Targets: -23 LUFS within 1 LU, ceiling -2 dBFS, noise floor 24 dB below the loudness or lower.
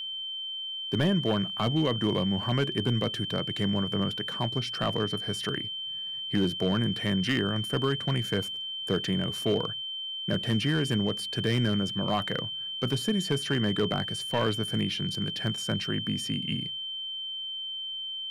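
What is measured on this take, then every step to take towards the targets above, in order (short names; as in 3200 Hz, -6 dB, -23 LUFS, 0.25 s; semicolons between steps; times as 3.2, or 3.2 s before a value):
clipped 0.5%; flat tops at -18.0 dBFS; steady tone 3100 Hz; tone level -33 dBFS; loudness -29.0 LUFS; peak -18.0 dBFS; loudness target -23.0 LUFS
-> clip repair -18 dBFS; notch 3100 Hz, Q 30; gain +6 dB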